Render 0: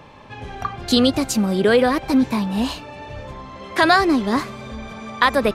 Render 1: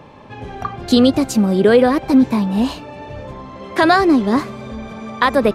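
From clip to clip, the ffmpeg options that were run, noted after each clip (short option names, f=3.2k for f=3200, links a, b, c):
-af "equalizer=f=290:w=0.32:g=7,volume=-2dB"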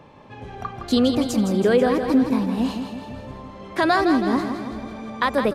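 -af "aecho=1:1:163|326|489|652|815|978|1141:0.422|0.236|0.132|0.0741|0.0415|0.0232|0.013,volume=-6.5dB"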